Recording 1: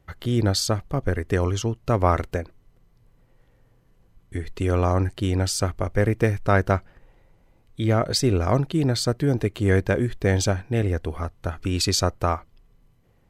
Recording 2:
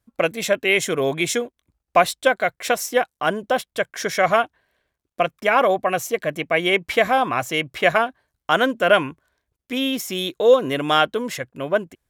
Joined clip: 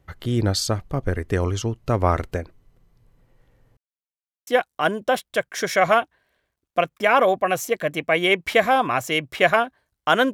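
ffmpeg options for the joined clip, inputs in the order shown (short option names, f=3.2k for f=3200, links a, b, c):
-filter_complex "[0:a]apad=whole_dur=10.33,atrim=end=10.33,asplit=2[a][b];[a]atrim=end=3.77,asetpts=PTS-STARTPTS,afade=t=out:st=3.766:d=0.004:c=hsin[c];[b]atrim=start=3.77:end=4.47,asetpts=PTS-STARTPTS,volume=0[d];[1:a]atrim=start=2.89:end=8.75,asetpts=PTS-STARTPTS,afade=t=in:d=0.004:c=hsin[e];[c][d][e]concat=n=3:v=0:a=1"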